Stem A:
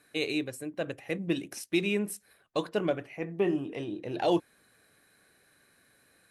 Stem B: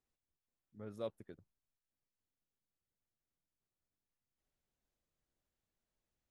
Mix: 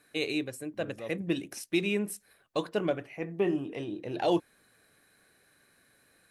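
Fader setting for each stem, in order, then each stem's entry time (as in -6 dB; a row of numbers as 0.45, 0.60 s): -0.5, +0.5 dB; 0.00, 0.00 s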